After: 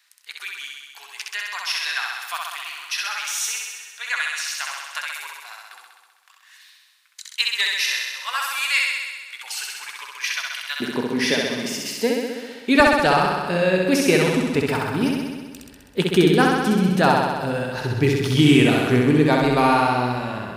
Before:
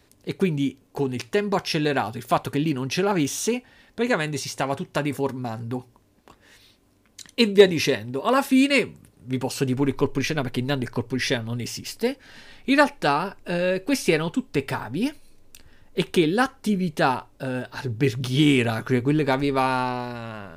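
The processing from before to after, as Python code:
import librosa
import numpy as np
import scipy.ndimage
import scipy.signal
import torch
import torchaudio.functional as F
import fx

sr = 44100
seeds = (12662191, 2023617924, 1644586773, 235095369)

y = fx.highpass(x, sr, hz=fx.steps((0.0, 1300.0), (10.8, 180.0), (12.8, 40.0)), slope=24)
y = fx.room_flutter(y, sr, wall_m=11.1, rt60_s=1.4)
y = y * librosa.db_to_amplitude(2.0)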